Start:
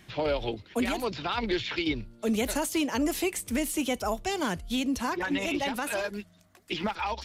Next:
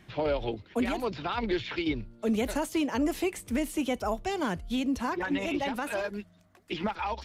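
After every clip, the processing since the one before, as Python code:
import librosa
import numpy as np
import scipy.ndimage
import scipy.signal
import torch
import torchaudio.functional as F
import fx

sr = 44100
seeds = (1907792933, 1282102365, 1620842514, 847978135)

y = fx.high_shelf(x, sr, hz=3100.0, db=-9.0)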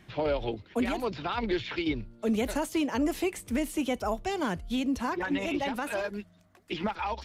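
y = x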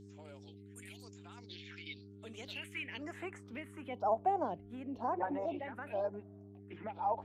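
y = fx.filter_sweep_bandpass(x, sr, from_hz=7800.0, to_hz=740.0, start_s=1.31, end_s=4.19, q=3.0)
y = fx.phaser_stages(y, sr, stages=4, low_hz=700.0, high_hz=4800.0, hz=1.0, feedback_pct=45)
y = fx.dmg_buzz(y, sr, base_hz=100.0, harmonics=4, level_db=-58.0, tilt_db=-2, odd_only=False)
y = F.gain(torch.from_numpy(y), 4.0).numpy()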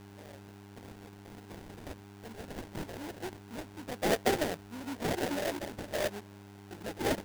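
y = fx.sample_hold(x, sr, seeds[0], rate_hz=1200.0, jitter_pct=20)
y = F.gain(torch.from_numpy(y), 3.0).numpy()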